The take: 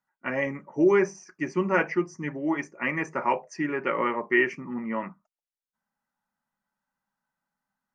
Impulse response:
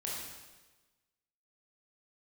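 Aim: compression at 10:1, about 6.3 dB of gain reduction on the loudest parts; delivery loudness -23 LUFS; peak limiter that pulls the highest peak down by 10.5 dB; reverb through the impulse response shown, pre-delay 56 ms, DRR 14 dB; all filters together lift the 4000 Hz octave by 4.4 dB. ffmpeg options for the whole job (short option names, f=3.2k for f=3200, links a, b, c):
-filter_complex "[0:a]equalizer=f=4k:t=o:g=7.5,acompressor=threshold=-22dB:ratio=10,alimiter=limit=-23dB:level=0:latency=1,asplit=2[a][b];[1:a]atrim=start_sample=2205,adelay=56[c];[b][c]afir=irnorm=-1:irlink=0,volume=-16dB[d];[a][d]amix=inputs=2:normalize=0,volume=10.5dB"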